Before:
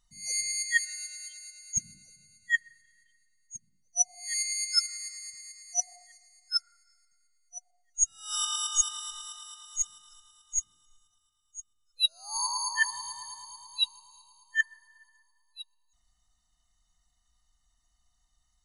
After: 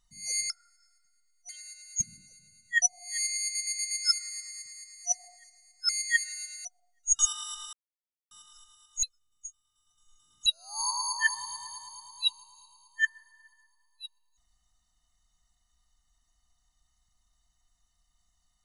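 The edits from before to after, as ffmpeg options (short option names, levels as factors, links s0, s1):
-filter_complex "[0:a]asplit=15[s0][s1][s2][s3][s4][s5][s6][s7][s8][s9][s10][s11][s12][s13][s14];[s0]atrim=end=0.502[s15];[s1]atrim=start=6.568:end=7.562[s16];[s2]atrim=start=1.258:end=2.592[s17];[s3]atrim=start=3.978:end=4.712[s18];[s4]atrim=start=4.588:end=4.712[s19];[s5]atrim=start=4.588:end=4.712[s20];[s6]atrim=start=4.588:end=4.712[s21];[s7]atrim=start=4.588:end=6.572[s22];[s8]atrim=start=0.498:end=1.262[s23];[s9]atrim=start=7.558:end=8.102[s24];[s10]atrim=start=8.748:end=9.29,asetpts=PTS-STARTPTS,afade=t=out:st=0.538:d=0.004:c=hsin[s25];[s11]atrim=start=9.29:end=9.87,asetpts=PTS-STARTPTS,volume=0[s26];[s12]atrim=start=9.87:end=10.592,asetpts=PTS-STARTPTS,afade=t=in:d=0.004:c=hsin[s27];[s13]atrim=start=10.588:end=12.022,asetpts=PTS-STARTPTS,areverse[s28];[s14]atrim=start=12.018[s29];[s15][s16]acrossfade=d=0.004:c1=hsin:c2=hsin[s30];[s30][s17]acrossfade=d=0.004:c1=hsin:c2=hsin[s31];[s31][s18]acrossfade=d=0.004:c1=hsin:c2=hsin[s32];[s32][s19]acrossfade=d=0.004:c1=hsin:c2=hsin[s33];[s33][s20]acrossfade=d=0.004:c1=hsin:c2=hsin[s34];[s34][s21]acrossfade=d=0.004:c1=hsin:c2=hsin[s35];[s35][s22]acrossfade=d=0.004:c1=hsin:c2=hsin[s36];[s36][s23]acrossfade=d=0.004:c1=hsin:c2=hsin[s37];[s37][s24]acrossfade=d=0.004:c1=hsin:c2=hsin[s38];[s25][s26][s27]concat=n=3:v=0:a=1[s39];[s38][s39]acrossfade=d=0.004:c1=hsin:c2=hsin[s40];[s40][s28]acrossfade=d=0.004:c1=hsin:c2=hsin[s41];[s41][s29]acrossfade=d=0.004:c1=hsin:c2=hsin"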